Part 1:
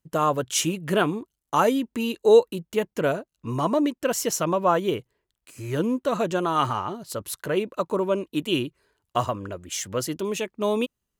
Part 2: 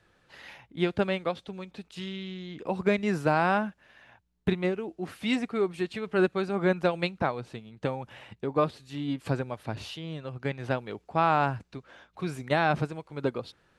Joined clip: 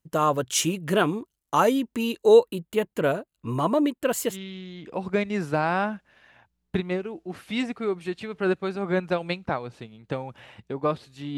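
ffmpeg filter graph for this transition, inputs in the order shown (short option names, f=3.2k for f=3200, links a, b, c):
-filter_complex "[0:a]asettb=1/sr,asplit=3[a][b][c];[a]atrim=end=2.344[d];[b]atrim=start=2.34:end=4.37,asetpts=PTS-STARTPTS,afade=t=in:d=0.004:c=qsin,afade=t=out:st=2.026:d=0.004:c=qsin,equalizer=f=5.7k:w=5:g=-14[e];[c]atrim=start=4.366[f];[d][e]acrossfade=d=0.004:c1=hsin:c2=qsin[g];[g][f]acrossfade=d=0.004:c1=qsin:c2=hsin,apad=whole_dur=11.37,atrim=end=11.37,atrim=end=4.37,asetpts=PTS-STARTPTS[h];[1:a]atrim=start=2:end=9.1,asetpts=PTS-STARTPTS[i];[h][i]acrossfade=d=0.1:c1=tri:c2=tri"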